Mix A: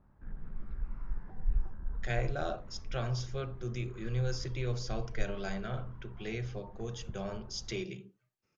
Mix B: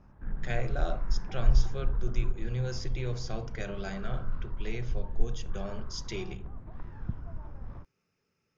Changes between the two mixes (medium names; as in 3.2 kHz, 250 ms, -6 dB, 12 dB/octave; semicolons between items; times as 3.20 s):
speech: entry -1.60 s; background +8.0 dB